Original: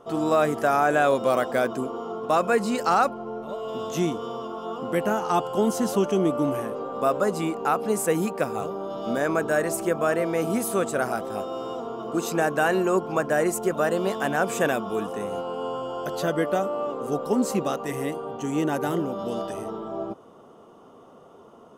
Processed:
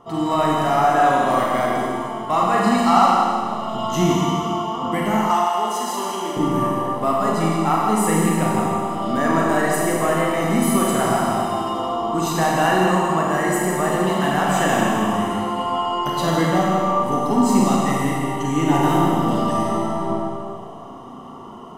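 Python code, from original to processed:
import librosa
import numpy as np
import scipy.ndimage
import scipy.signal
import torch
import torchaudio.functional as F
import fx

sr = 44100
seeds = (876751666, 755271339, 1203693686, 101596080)

p1 = np.clip(x, -10.0 ** (-27.5 / 20.0), 10.0 ** (-27.5 / 20.0))
p2 = x + (p1 * librosa.db_to_amplitude(-10.0))
p3 = fx.high_shelf(p2, sr, hz=5900.0, db=-4.0)
p4 = p3 + 0.61 * np.pad(p3, (int(1.0 * sr / 1000.0), 0))[:len(p3)]
p5 = fx.rev_schroeder(p4, sr, rt60_s=1.8, comb_ms=33, drr_db=-3.0)
p6 = fx.rider(p5, sr, range_db=4, speed_s=2.0)
p7 = fx.highpass(p6, sr, hz=560.0, slope=12, at=(5.3, 6.37))
y = p7 + 10.0 ** (-10.0 / 20.0) * np.pad(p7, (int(165 * sr / 1000.0), 0))[:len(p7)]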